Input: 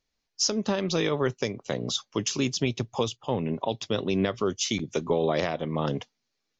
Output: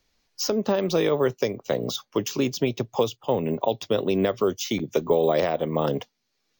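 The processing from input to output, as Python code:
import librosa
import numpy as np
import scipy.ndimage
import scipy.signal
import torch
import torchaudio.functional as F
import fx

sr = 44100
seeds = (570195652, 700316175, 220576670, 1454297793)

y = fx.dynamic_eq(x, sr, hz=540.0, q=0.82, threshold_db=-39.0, ratio=4.0, max_db=8)
y = np.repeat(y[::2], 2)[:len(y)]
y = fx.band_squash(y, sr, depth_pct=40)
y = F.gain(torch.from_numpy(y), -1.5).numpy()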